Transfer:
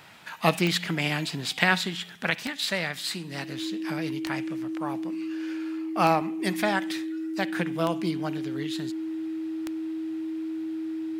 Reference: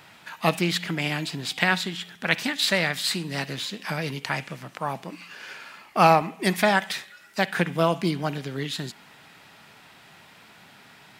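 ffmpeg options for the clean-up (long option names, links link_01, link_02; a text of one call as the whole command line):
ffmpeg -i in.wav -af "adeclick=threshold=4,bandreject=frequency=320:width=30,asetnsamples=nb_out_samples=441:pad=0,asendcmd='2.3 volume volume 5.5dB',volume=0dB" out.wav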